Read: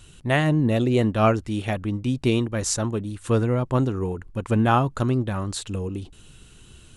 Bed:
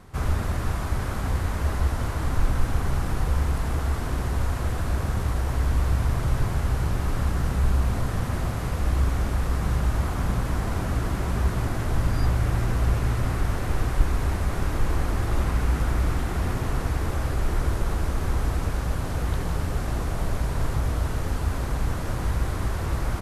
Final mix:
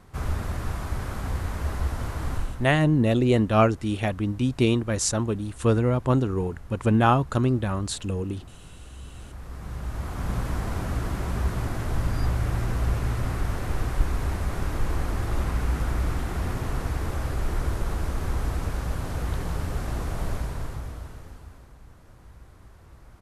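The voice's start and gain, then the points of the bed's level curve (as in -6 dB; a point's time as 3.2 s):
2.35 s, 0.0 dB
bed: 2.33 s -3.5 dB
2.78 s -20.5 dB
8.99 s -20.5 dB
10.37 s -2.5 dB
20.32 s -2.5 dB
21.76 s -23.5 dB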